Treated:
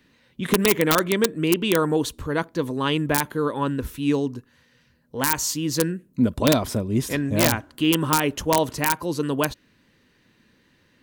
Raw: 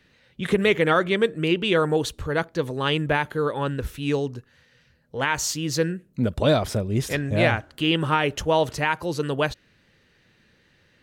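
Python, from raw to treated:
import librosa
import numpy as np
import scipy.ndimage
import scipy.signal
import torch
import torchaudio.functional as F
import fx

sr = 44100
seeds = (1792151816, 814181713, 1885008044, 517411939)

y = (np.mod(10.0 ** (9.5 / 20.0) * x + 1.0, 2.0) - 1.0) / 10.0 ** (9.5 / 20.0)
y = fx.high_shelf(y, sr, hz=8700.0, db=10.0)
y = fx.small_body(y, sr, hz=(260.0, 1000.0), ring_ms=25, db=9)
y = y * 10.0 ** (-2.5 / 20.0)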